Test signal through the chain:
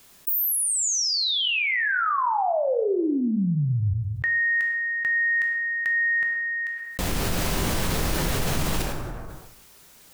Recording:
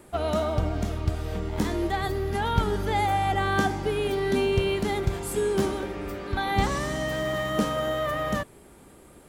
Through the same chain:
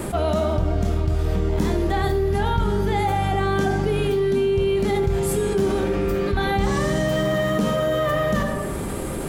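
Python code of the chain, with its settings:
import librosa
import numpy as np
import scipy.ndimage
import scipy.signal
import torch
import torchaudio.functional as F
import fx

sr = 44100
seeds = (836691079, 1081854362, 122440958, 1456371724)

y = fx.low_shelf(x, sr, hz=300.0, db=6.0)
y = fx.rider(y, sr, range_db=3, speed_s=0.5)
y = fx.rev_plate(y, sr, seeds[0], rt60_s=0.75, hf_ratio=0.65, predelay_ms=0, drr_db=5.0)
y = fx.env_flatten(y, sr, amount_pct=70)
y = F.gain(torch.from_numpy(y), -5.0).numpy()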